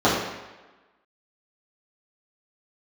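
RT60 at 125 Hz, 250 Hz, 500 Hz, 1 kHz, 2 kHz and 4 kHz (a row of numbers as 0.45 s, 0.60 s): 0.90 s, 1.1 s, 1.2 s, 1.2 s, 1.2 s, 1.0 s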